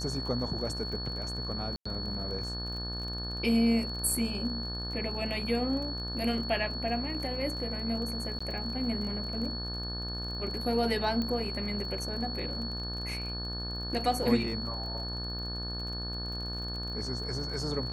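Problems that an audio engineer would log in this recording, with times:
mains buzz 60 Hz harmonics 30 −38 dBFS
surface crackle 31 per second −39 dBFS
whistle 4,400 Hz −37 dBFS
0:01.76–0:01.85: drop-out 95 ms
0:08.39–0:08.40: drop-out 15 ms
0:11.22: click −21 dBFS

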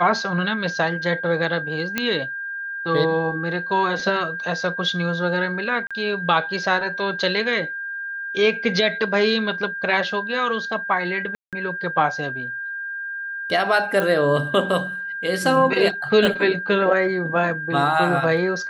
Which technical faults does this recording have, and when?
whistle 1,600 Hz −27 dBFS
0:01.98: click −6 dBFS
0:05.87–0:05.91: drop-out 36 ms
0:11.35–0:11.53: drop-out 177 ms
0:14.00: click −10 dBFS
0:16.25: click −8 dBFS

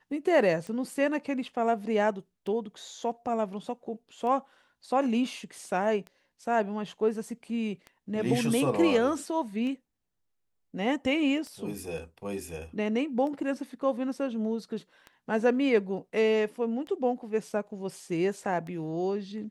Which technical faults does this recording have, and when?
scratch tick 33 1/3 rpm −28 dBFS

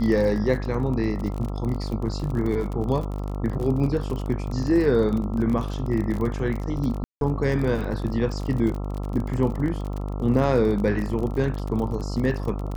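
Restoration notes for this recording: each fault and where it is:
mains buzz 50 Hz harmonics 27 −29 dBFS
surface crackle 40 per second −29 dBFS
0:07.04–0:07.21: drop-out 172 ms

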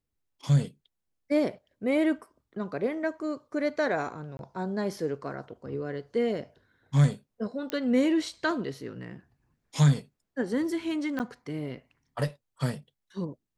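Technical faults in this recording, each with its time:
0:04.37–0:04.39: drop-out 21 ms
0:07.70: click −17 dBFS
0:11.19–0:11.20: drop-out 9.3 ms

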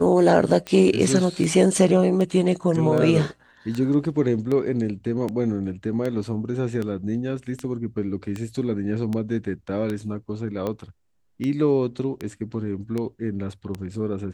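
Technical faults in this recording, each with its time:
scratch tick 78 rpm −16 dBFS

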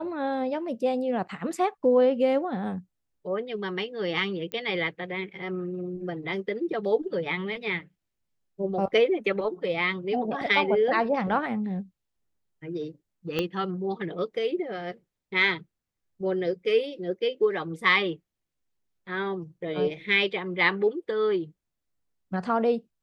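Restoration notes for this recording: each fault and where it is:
0:04.52: click −19 dBFS
0:13.39: click −13 dBFS

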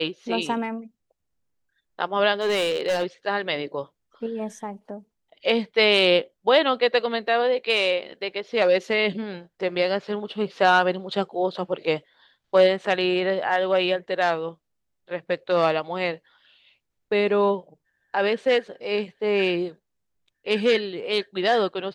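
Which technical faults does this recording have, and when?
0:02.41–0:03.04: clipping −19 dBFS

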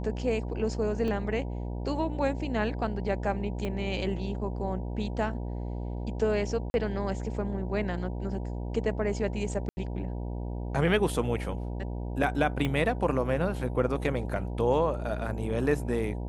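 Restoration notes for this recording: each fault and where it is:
mains buzz 60 Hz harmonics 16 −34 dBFS
0:01.08: drop-out 2.2 ms
0:03.65: click −21 dBFS
0:06.70–0:06.74: drop-out 41 ms
0:09.69–0:09.77: drop-out 80 ms
0:12.65: click −17 dBFS

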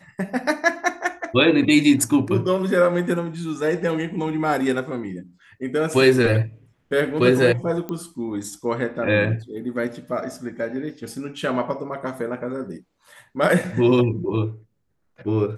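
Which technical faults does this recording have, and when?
0:07.89: click −17 dBFS

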